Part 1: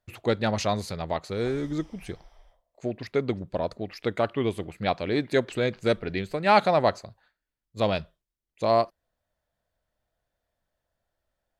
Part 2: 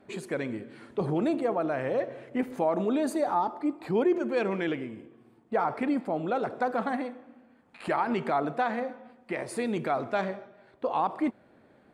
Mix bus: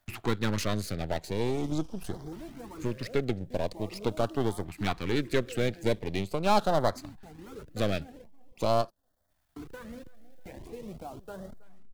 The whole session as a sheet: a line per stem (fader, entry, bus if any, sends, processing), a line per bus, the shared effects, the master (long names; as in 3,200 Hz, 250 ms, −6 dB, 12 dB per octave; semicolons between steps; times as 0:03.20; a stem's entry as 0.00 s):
+1.5 dB, 0.00 s, no send, no echo send, gain on one half-wave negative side −12 dB; high-shelf EQ 9,700 Hz +7.5 dB
−15.0 dB, 1.15 s, muted 0:08.52–0:09.56, no send, echo send −22 dB, hold until the input has moved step −30.5 dBFS; tilt shelving filter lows +5 dB, about 870 Hz; flanger whose copies keep moving one way rising 1.9 Hz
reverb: not used
echo: repeating echo 322 ms, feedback 37%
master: auto-filter notch saw up 0.43 Hz 470–2,800 Hz; multiband upward and downward compressor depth 40%